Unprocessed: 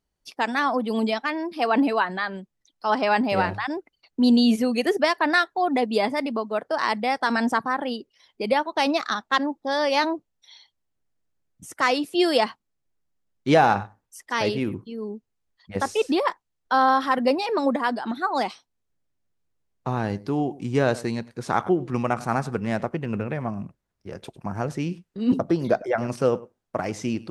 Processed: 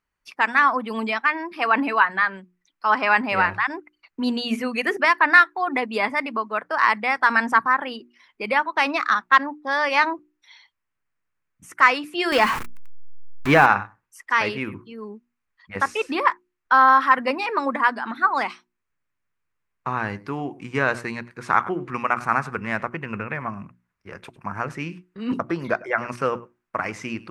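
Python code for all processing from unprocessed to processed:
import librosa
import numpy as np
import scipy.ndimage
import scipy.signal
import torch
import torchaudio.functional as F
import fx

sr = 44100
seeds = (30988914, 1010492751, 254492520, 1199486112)

y = fx.chain(x, sr, fx.zero_step(step_db=-24.0),
    fx.low_shelf(hz=390.0, db=6.0), at=(12.32, 13.66))
y = fx.band_shelf(y, sr, hz=1600.0, db=12.0, octaves=1.7)
y = fx.hum_notches(y, sr, base_hz=60, count=6)
y = y * 10.0 ** (-4.0 / 20.0)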